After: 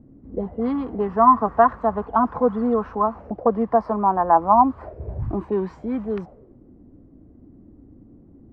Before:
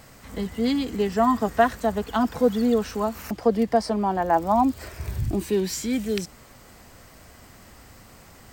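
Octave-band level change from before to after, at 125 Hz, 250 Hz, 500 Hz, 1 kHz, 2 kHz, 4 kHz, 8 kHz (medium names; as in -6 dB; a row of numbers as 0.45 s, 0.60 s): -1.0 dB, -0.5 dB, +1.5 dB, +6.5 dB, -3.5 dB, under -20 dB, under -35 dB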